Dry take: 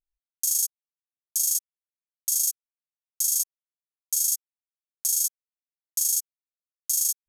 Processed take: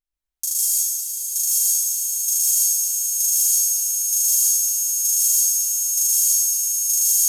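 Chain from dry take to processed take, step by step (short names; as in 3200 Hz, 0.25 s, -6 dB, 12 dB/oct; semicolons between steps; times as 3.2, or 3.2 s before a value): on a send: swelling echo 0.11 s, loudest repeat 8, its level -12.5 dB; on the sum: plate-style reverb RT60 1.4 s, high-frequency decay 0.95×, pre-delay 0.115 s, DRR -5.5 dB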